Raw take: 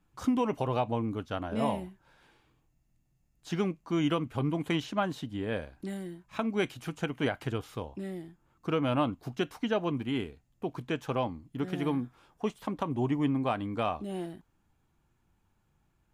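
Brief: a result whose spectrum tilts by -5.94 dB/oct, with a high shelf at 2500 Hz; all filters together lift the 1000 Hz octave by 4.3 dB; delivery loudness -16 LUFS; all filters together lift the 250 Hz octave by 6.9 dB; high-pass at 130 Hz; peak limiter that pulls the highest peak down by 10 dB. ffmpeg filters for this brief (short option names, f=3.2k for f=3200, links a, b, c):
-af "highpass=130,equalizer=f=250:t=o:g=8.5,equalizer=f=1k:t=o:g=6,highshelf=f=2.5k:g=-7,volume=15dB,alimiter=limit=-4.5dB:level=0:latency=1"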